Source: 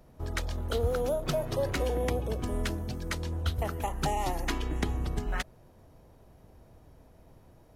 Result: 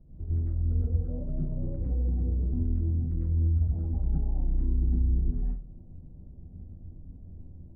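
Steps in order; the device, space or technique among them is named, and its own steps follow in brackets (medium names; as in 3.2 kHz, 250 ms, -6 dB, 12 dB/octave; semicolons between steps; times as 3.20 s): television next door (compression 4:1, threshold -37 dBFS, peak gain reduction 12 dB; low-pass 280 Hz 12 dB/octave; reverberation RT60 0.35 s, pre-delay 95 ms, DRR -6 dB); bass shelf 230 Hz +8.5 dB; trim -4 dB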